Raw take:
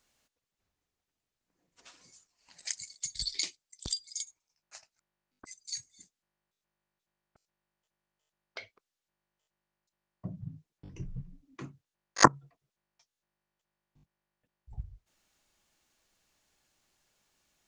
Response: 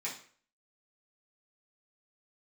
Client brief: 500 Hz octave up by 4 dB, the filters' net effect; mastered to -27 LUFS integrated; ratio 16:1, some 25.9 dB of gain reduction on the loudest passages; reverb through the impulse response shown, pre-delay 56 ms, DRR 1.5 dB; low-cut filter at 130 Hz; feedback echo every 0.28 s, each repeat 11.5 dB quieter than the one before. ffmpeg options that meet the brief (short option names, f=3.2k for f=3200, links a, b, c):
-filter_complex "[0:a]highpass=130,equalizer=f=500:t=o:g=5,acompressor=threshold=-37dB:ratio=16,aecho=1:1:280|560|840:0.266|0.0718|0.0194,asplit=2[a][b];[1:a]atrim=start_sample=2205,adelay=56[c];[b][c]afir=irnorm=-1:irlink=0,volume=-4dB[d];[a][d]amix=inputs=2:normalize=0,volume=17dB"